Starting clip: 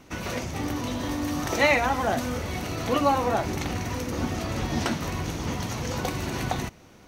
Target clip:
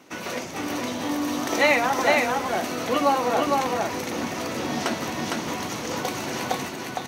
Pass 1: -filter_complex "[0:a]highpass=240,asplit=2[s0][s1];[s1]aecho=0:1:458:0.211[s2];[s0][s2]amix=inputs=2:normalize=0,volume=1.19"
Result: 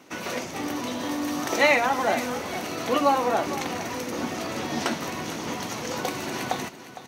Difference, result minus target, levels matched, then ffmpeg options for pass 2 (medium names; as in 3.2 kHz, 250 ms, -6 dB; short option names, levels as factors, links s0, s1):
echo-to-direct -11 dB
-filter_complex "[0:a]highpass=240,asplit=2[s0][s1];[s1]aecho=0:1:458:0.75[s2];[s0][s2]amix=inputs=2:normalize=0,volume=1.19"